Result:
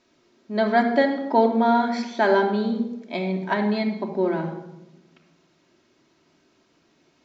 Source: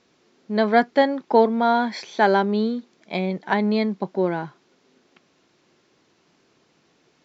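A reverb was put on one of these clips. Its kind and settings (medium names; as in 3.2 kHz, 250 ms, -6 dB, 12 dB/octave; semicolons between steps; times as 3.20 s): simulated room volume 3700 m³, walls furnished, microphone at 2.8 m; trim -3.5 dB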